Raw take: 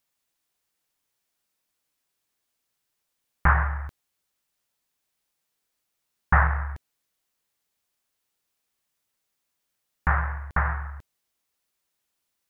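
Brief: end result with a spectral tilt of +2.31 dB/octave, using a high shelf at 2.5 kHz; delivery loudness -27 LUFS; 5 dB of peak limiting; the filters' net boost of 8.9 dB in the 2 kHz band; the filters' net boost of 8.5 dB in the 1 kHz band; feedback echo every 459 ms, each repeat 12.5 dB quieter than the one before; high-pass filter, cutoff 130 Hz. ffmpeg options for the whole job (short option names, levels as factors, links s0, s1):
-af "highpass=130,equalizer=f=1000:t=o:g=7.5,equalizer=f=2000:t=o:g=6.5,highshelf=f=2500:g=5,alimiter=limit=0.668:level=0:latency=1,aecho=1:1:459|918|1377:0.237|0.0569|0.0137,volume=0.531"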